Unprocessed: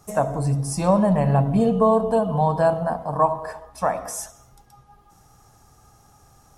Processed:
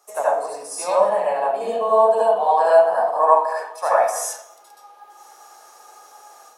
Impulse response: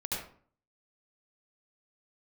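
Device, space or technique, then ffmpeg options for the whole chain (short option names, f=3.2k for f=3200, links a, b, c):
far laptop microphone: -filter_complex "[1:a]atrim=start_sample=2205[a];[0:a][a]afir=irnorm=-1:irlink=0,highpass=190,dynaudnorm=f=590:g=3:m=7dB,highpass=f=460:w=0.5412,highpass=f=460:w=1.3066"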